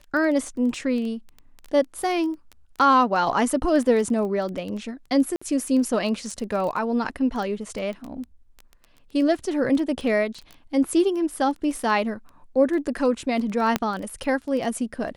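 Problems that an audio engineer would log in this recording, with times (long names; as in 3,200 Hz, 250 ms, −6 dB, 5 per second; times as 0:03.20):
surface crackle 10 per second −29 dBFS
0:05.36–0:05.42: drop-out 55 ms
0:13.76: click −6 dBFS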